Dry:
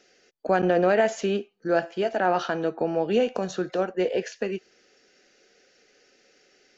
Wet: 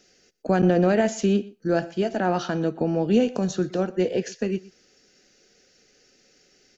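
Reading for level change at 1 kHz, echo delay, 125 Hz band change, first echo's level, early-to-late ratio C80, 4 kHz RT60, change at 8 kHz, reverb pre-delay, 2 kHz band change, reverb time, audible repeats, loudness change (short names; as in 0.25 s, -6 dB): -2.5 dB, 0.121 s, +9.0 dB, -21.0 dB, none, none, n/a, none, -2.5 dB, none, 1, +1.5 dB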